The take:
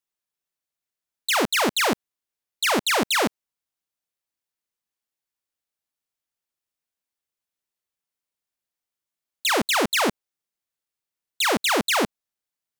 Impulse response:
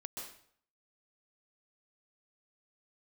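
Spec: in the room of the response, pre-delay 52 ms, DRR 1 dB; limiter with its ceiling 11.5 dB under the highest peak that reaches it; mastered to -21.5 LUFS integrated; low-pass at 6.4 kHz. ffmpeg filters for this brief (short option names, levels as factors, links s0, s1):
-filter_complex "[0:a]lowpass=6400,alimiter=level_in=1.26:limit=0.0631:level=0:latency=1,volume=0.794,asplit=2[s0][s1];[1:a]atrim=start_sample=2205,adelay=52[s2];[s1][s2]afir=irnorm=-1:irlink=0,volume=1.12[s3];[s0][s3]amix=inputs=2:normalize=0,volume=2.82"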